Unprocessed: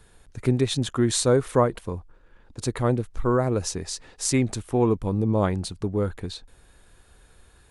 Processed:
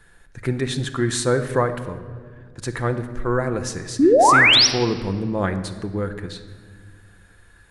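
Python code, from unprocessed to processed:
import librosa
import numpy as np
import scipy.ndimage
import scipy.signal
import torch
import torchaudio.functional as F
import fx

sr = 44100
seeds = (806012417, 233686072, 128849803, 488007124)

y = fx.peak_eq(x, sr, hz=1700.0, db=11.5, octaves=0.56)
y = fx.spec_paint(y, sr, seeds[0], shape='rise', start_s=3.99, length_s=0.68, low_hz=250.0, high_hz=6000.0, level_db=-12.0)
y = fx.room_shoebox(y, sr, seeds[1], volume_m3=2300.0, walls='mixed', distance_m=0.79)
y = y * 10.0 ** (-1.5 / 20.0)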